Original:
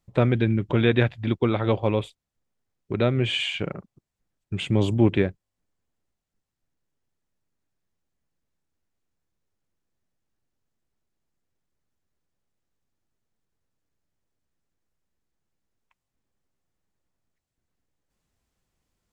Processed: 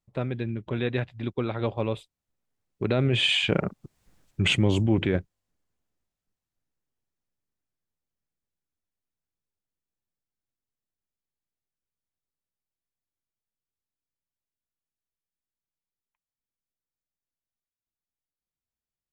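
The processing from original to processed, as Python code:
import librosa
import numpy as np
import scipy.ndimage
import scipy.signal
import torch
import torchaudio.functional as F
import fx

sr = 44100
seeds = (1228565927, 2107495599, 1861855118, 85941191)

p1 = fx.doppler_pass(x, sr, speed_mps=11, closest_m=1.9, pass_at_s=4.14)
p2 = fx.over_compress(p1, sr, threshold_db=-39.0, ratio=-0.5)
p3 = p1 + F.gain(torch.from_numpy(p2), 3.0).numpy()
y = F.gain(torch.from_numpy(p3), 8.0).numpy()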